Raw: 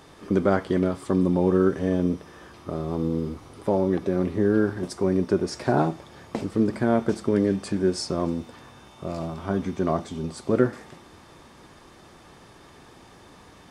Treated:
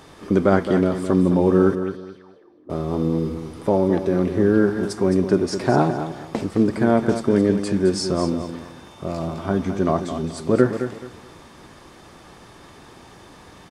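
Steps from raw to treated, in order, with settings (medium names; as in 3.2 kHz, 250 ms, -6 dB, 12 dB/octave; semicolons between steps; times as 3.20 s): 1.75–2.70 s: auto-wah 240–4300 Hz, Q 6.4, up, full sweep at -19 dBFS; feedback delay 214 ms, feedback 26%, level -9.5 dB; trim +4 dB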